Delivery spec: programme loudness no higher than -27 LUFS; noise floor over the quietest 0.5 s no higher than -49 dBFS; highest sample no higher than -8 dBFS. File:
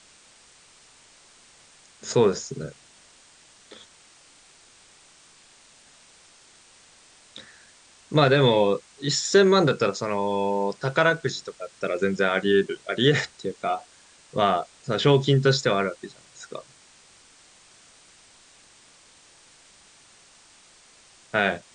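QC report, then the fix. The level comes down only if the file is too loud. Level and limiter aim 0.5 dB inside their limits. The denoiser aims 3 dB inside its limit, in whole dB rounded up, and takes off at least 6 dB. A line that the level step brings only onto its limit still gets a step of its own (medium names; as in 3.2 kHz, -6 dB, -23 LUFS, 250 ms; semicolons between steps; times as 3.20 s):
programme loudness -23.0 LUFS: fail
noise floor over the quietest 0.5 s -54 dBFS: pass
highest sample -5.5 dBFS: fail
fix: trim -4.5 dB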